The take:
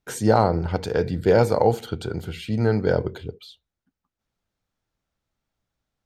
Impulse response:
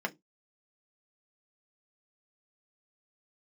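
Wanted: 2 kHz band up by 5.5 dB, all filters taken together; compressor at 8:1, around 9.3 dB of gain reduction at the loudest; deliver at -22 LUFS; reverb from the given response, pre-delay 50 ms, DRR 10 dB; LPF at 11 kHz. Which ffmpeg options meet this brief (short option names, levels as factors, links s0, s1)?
-filter_complex "[0:a]lowpass=11000,equalizer=f=2000:t=o:g=8,acompressor=threshold=0.0891:ratio=8,asplit=2[s0][s1];[1:a]atrim=start_sample=2205,adelay=50[s2];[s1][s2]afir=irnorm=-1:irlink=0,volume=0.168[s3];[s0][s3]amix=inputs=2:normalize=0,volume=1.88"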